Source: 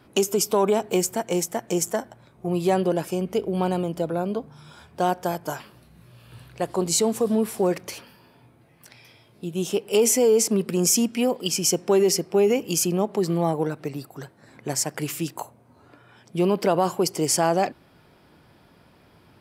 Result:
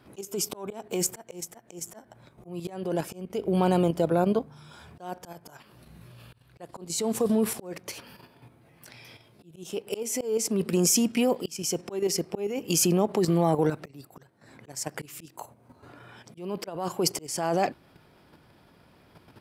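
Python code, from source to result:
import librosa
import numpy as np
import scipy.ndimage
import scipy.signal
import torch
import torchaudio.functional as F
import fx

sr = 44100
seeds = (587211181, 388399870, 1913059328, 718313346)

y = fx.level_steps(x, sr, step_db=9)
y = fx.auto_swell(y, sr, attack_ms=479.0)
y = F.gain(torch.from_numpy(y), 5.0).numpy()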